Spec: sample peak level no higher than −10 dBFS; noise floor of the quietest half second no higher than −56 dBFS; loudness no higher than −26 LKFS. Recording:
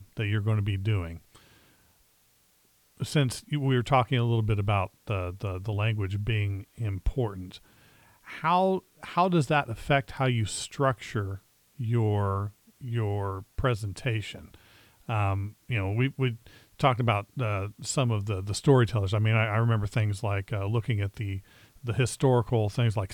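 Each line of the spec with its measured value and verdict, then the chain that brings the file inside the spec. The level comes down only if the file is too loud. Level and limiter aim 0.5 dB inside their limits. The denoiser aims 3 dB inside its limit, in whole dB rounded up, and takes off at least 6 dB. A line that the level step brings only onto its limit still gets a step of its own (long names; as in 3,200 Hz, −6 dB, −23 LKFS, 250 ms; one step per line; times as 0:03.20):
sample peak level −8.5 dBFS: out of spec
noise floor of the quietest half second −65 dBFS: in spec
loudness −28.0 LKFS: in spec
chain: brickwall limiter −10.5 dBFS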